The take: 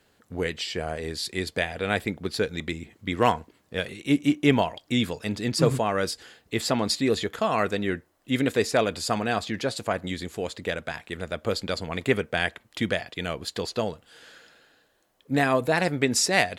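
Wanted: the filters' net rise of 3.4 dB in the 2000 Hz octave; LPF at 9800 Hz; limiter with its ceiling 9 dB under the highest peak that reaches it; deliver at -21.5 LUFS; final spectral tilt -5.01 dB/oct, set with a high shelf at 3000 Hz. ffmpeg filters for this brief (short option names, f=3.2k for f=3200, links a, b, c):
-af "lowpass=9.8k,equalizer=f=2k:t=o:g=6.5,highshelf=f=3k:g=-7,volume=7dB,alimiter=limit=-6dB:level=0:latency=1"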